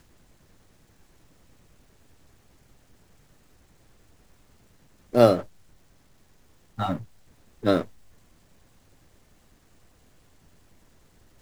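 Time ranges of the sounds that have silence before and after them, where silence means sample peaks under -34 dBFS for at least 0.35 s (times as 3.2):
5.14–5.42
6.79–7.02
7.63–7.82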